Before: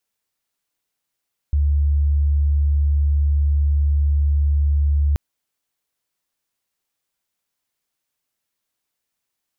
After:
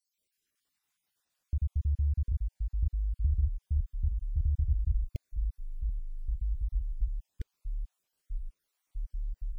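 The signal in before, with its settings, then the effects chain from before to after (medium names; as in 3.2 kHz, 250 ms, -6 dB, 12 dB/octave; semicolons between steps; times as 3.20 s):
tone sine 72.4 Hz -14 dBFS 3.63 s
random holes in the spectrogram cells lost 69%; peak limiter -23.5 dBFS; ever faster or slower copies 118 ms, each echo -6 st, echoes 3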